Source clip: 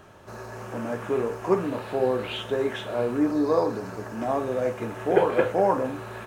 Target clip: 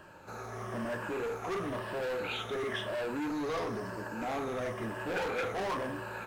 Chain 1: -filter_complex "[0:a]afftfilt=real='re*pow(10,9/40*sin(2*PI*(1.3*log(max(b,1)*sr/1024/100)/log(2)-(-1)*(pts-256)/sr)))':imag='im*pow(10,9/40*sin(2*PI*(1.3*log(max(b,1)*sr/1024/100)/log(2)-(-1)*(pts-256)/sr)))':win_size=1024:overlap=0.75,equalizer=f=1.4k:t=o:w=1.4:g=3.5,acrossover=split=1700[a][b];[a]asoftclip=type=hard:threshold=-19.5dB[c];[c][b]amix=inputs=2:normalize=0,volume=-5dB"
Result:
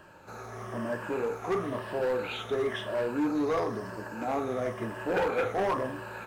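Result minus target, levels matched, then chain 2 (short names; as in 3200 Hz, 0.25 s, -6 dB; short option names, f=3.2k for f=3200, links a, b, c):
hard clip: distortion -6 dB
-filter_complex "[0:a]afftfilt=real='re*pow(10,9/40*sin(2*PI*(1.3*log(max(b,1)*sr/1024/100)/log(2)-(-1)*(pts-256)/sr)))':imag='im*pow(10,9/40*sin(2*PI*(1.3*log(max(b,1)*sr/1024/100)/log(2)-(-1)*(pts-256)/sr)))':win_size=1024:overlap=0.75,equalizer=f=1.4k:t=o:w=1.4:g=3.5,acrossover=split=1700[a][b];[a]asoftclip=type=hard:threshold=-28dB[c];[c][b]amix=inputs=2:normalize=0,volume=-5dB"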